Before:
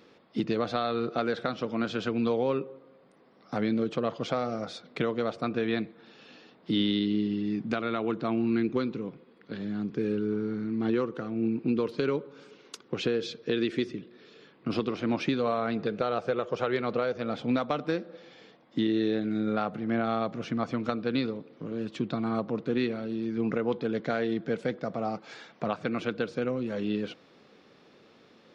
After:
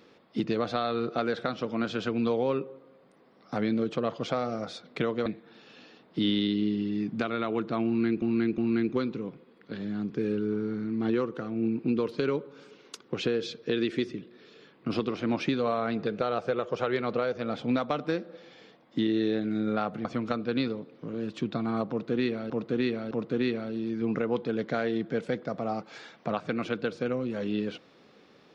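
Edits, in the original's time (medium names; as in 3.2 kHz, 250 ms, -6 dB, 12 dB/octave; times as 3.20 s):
5.26–5.78 s: delete
8.38–8.74 s: loop, 3 plays
19.85–20.63 s: delete
22.47–23.08 s: loop, 3 plays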